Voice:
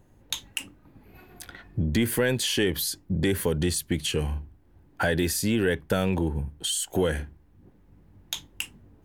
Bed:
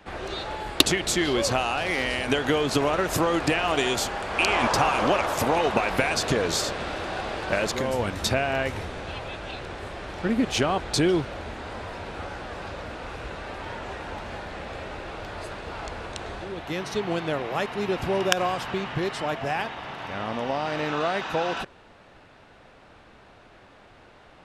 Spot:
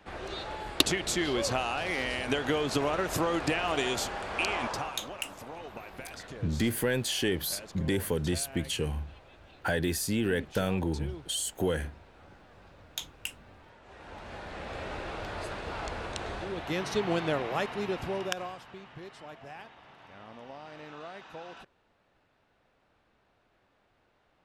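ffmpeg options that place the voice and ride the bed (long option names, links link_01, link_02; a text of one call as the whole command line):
ffmpeg -i stem1.wav -i stem2.wav -filter_complex "[0:a]adelay=4650,volume=-4.5dB[link_01];[1:a]volume=13.5dB,afade=type=out:start_time=4.27:duration=0.75:silence=0.177828,afade=type=in:start_time=13.83:duration=1.1:silence=0.112202,afade=type=out:start_time=17.27:duration=1.36:silence=0.149624[link_02];[link_01][link_02]amix=inputs=2:normalize=0" out.wav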